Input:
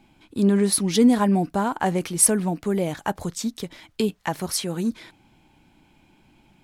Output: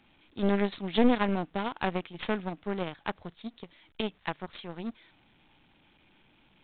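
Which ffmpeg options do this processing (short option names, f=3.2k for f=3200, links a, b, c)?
-af "aeval=exprs='val(0)+0.5*0.0841*sgn(val(0))':c=same,aeval=exprs='0.631*(cos(1*acos(clip(val(0)/0.631,-1,1)))-cos(1*PI/2))+0.00447*(cos(3*acos(clip(val(0)/0.631,-1,1)))-cos(3*PI/2))+0.0112*(cos(4*acos(clip(val(0)/0.631,-1,1)))-cos(4*PI/2))+0.0891*(cos(7*acos(clip(val(0)/0.631,-1,1)))-cos(7*PI/2))':c=same,aresample=8000,aeval=exprs='clip(val(0),-1,0.0531)':c=same,aresample=44100,highshelf=f=2.6k:g=10,volume=-6dB"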